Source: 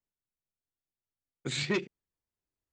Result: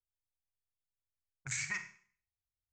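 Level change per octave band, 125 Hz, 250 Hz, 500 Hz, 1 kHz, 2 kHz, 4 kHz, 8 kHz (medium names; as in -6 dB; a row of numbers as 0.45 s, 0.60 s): -10.0 dB, -21.0 dB, -31.0 dB, -7.5 dB, -1.5 dB, -12.5 dB, +3.0 dB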